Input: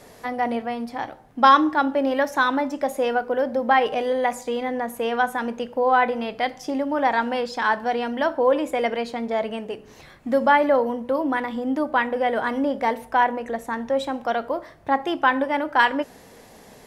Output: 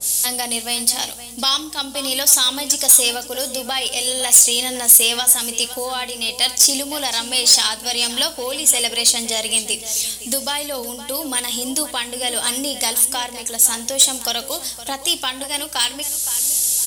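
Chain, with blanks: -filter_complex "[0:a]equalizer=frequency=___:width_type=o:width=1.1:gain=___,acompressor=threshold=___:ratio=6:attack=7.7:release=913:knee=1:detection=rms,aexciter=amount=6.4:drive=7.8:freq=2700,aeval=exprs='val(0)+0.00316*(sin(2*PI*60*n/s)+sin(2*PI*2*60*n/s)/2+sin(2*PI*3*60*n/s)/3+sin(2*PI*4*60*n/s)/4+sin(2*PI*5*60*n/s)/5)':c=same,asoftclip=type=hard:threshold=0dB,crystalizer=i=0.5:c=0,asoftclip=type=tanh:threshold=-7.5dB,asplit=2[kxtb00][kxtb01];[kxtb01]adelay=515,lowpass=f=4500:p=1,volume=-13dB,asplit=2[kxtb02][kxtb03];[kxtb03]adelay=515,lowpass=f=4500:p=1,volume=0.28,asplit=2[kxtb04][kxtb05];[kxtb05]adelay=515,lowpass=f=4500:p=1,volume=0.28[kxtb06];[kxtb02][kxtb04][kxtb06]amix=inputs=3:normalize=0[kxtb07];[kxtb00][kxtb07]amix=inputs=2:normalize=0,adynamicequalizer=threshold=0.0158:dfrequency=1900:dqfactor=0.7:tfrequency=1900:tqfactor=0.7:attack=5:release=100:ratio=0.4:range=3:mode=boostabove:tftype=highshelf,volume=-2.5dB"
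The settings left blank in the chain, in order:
8900, 15, -19dB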